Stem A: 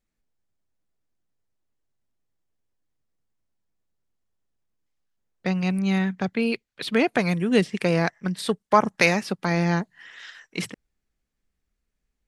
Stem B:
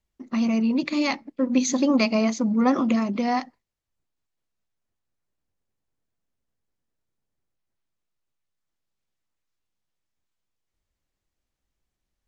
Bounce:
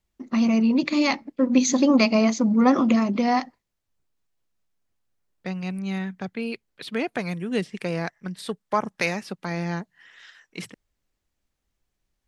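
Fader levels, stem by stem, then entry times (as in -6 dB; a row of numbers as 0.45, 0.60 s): -6.0, +2.5 dB; 0.00, 0.00 s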